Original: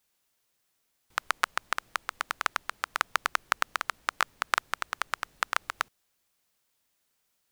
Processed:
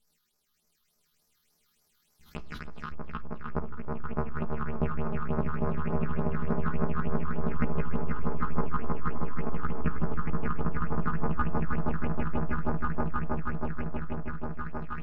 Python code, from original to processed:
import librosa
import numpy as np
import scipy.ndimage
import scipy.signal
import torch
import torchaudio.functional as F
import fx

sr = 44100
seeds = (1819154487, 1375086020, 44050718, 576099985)

y = fx.lower_of_two(x, sr, delay_ms=4.8)
y = fx.low_shelf(y, sr, hz=140.0, db=4.0)
y = fx.over_compress(y, sr, threshold_db=-31.0, ratio=-0.5)
y = fx.echo_swell(y, sr, ms=80, loudest=8, wet_db=-4)
y = fx.stretch_grains(y, sr, factor=2.0, grain_ms=52.0)
y = fx.phaser_stages(y, sr, stages=6, low_hz=580.0, high_hz=3100.0, hz=3.4, feedback_pct=40)
y = fx.room_shoebox(y, sr, seeds[0], volume_m3=400.0, walls='furnished', distance_m=0.41)
y = fx.env_lowpass_down(y, sr, base_hz=1100.0, full_db=-28.5)
y = fx.sustainer(y, sr, db_per_s=25.0)